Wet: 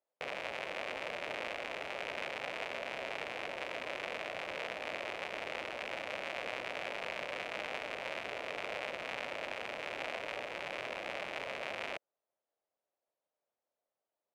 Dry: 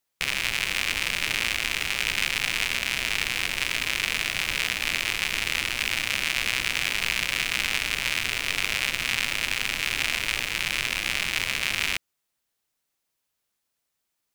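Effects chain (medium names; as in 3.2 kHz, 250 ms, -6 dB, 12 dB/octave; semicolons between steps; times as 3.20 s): band-pass filter 590 Hz, Q 3.1; trim +5.5 dB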